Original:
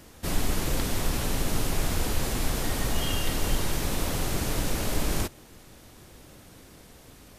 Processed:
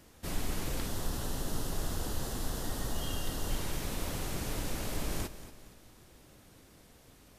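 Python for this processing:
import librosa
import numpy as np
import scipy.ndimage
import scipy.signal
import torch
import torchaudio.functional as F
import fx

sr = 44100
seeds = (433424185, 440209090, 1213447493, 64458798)

y = fx.peak_eq(x, sr, hz=2300.0, db=-12.0, octaves=0.34, at=(0.88, 3.51))
y = fx.echo_feedback(y, sr, ms=232, feedback_pct=42, wet_db=-14.0)
y = F.gain(torch.from_numpy(y), -8.0).numpy()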